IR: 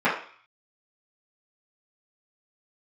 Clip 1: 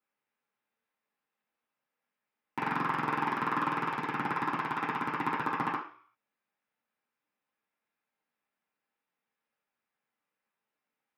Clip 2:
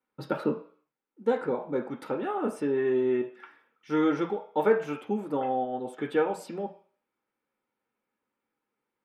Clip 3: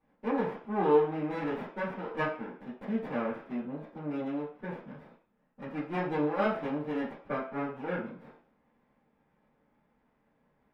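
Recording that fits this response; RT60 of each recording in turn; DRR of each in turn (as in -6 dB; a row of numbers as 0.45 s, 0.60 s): 3; 0.50 s, 0.50 s, 0.50 s; -7.5 dB, 2.5 dB, -12.0 dB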